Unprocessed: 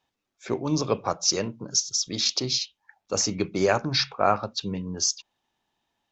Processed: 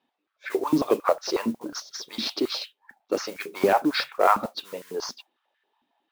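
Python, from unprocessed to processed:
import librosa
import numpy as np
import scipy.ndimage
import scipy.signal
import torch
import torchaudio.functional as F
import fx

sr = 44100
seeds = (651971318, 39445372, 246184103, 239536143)

y = fx.diode_clip(x, sr, knee_db=-15.0)
y = scipy.signal.sosfilt(scipy.signal.butter(4, 4200.0, 'lowpass', fs=sr, output='sos'), y)
y = fx.mod_noise(y, sr, seeds[0], snr_db=20)
y = fx.filter_held_highpass(y, sr, hz=11.0, low_hz=240.0, high_hz=1700.0)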